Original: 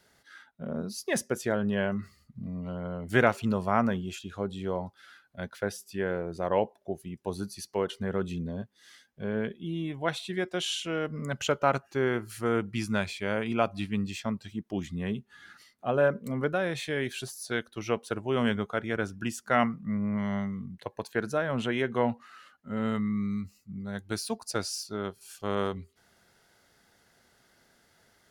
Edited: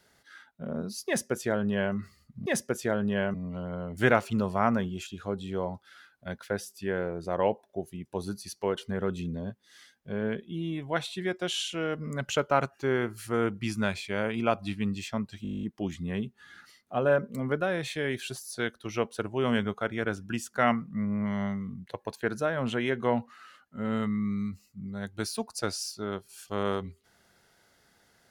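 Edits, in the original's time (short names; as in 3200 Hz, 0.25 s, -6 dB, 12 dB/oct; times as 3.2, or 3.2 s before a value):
1.07–1.95 copy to 2.46
14.55 stutter 0.02 s, 11 plays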